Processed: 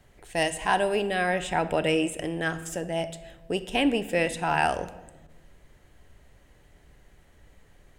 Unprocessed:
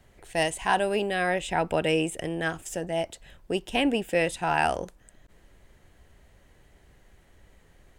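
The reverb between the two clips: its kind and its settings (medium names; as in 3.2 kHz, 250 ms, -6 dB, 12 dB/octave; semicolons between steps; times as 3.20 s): simulated room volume 650 m³, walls mixed, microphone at 0.38 m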